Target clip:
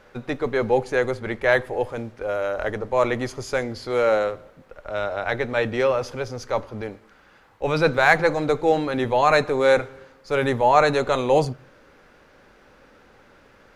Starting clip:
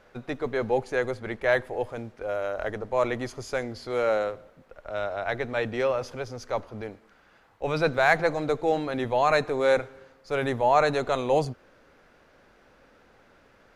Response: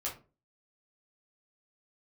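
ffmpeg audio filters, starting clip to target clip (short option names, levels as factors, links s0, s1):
-filter_complex "[0:a]bandreject=f=680:w=12,asplit=2[s0][s1];[1:a]atrim=start_sample=2205[s2];[s1][s2]afir=irnorm=-1:irlink=0,volume=0.126[s3];[s0][s3]amix=inputs=2:normalize=0,volume=1.68"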